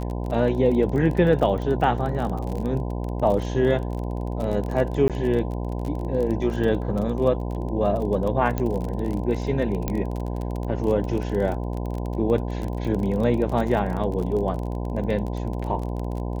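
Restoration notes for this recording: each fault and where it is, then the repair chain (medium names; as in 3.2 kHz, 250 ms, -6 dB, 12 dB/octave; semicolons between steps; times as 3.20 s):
buzz 60 Hz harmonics 17 -28 dBFS
crackle 28 per s -28 dBFS
5.08–5.10 s: dropout 17 ms
8.58 s: pop -13 dBFS
9.88 s: pop -11 dBFS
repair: de-click; de-hum 60 Hz, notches 17; interpolate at 5.08 s, 17 ms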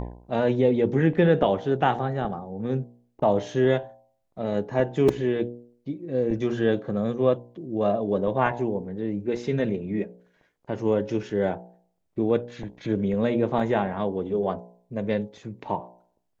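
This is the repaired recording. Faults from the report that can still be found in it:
8.58 s: pop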